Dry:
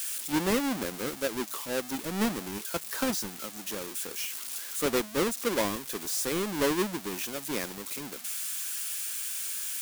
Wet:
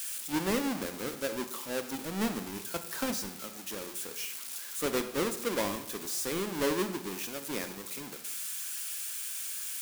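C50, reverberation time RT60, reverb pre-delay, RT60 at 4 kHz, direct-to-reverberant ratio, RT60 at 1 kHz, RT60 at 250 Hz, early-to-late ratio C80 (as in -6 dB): 11.0 dB, 0.85 s, 30 ms, 0.60 s, 9.0 dB, 0.80 s, 0.80 s, 13.5 dB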